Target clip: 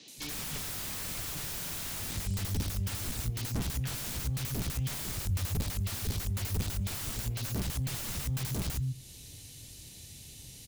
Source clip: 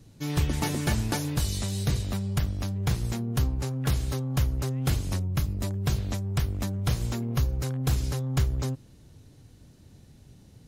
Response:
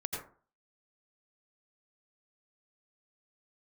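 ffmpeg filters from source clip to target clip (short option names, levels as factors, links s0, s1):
-filter_complex "[0:a]acrossover=split=210|5100[s0][s1][s2];[s2]adelay=80[s3];[s0]adelay=170[s4];[s4][s1][s3]amix=inputs=3:normalize=0,aexciter=amount=8.9:drive=2.3:freq=2100,aeval=exprs='(mod(11.9*val(0)+1,2)-1)/11.9':c=same,acrossover=split=190[s5][s6];[s6]acompressor=threshold=0.00398:ratio=2[s7];[s5][s7]amix=inputs=2:normalize=0,asplit=2[s8][s9];[1:a]atrim=start_sample=2205[s10];[s9][s10]afir=irnorm=-1:irlink=0,volume=0.0631[s11];[s8][s11]amix=inputs=2:normalize=0"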